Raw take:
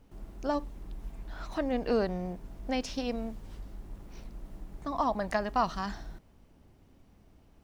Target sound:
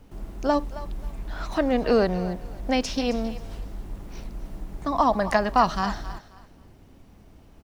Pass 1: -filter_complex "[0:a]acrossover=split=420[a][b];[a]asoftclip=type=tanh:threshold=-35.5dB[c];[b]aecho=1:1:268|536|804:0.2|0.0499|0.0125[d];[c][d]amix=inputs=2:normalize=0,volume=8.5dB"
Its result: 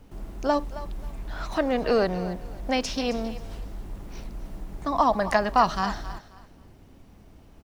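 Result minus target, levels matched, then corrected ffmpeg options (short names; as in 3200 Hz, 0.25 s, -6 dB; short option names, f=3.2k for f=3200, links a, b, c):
soft clip: distortion +12 dB
-filter_complex "[0:a]acrossover=split=420[a][b];[a]asoftclip=type=tanh:threshold=-25.5dB[c];[b]aecho=1:1:268|536|804:0.2|0.0499|0.0125[d];[c][d]amix=inputs=2:normalize=0,volume=8.5dB"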